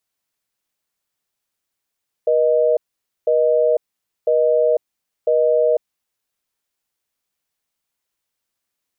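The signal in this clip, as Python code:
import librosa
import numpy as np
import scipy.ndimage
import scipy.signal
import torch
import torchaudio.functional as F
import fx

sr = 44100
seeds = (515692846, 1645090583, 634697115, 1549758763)

y = fx.call_progress(sr, length_s=3.66, kind='busy tone', level_db=-15.5)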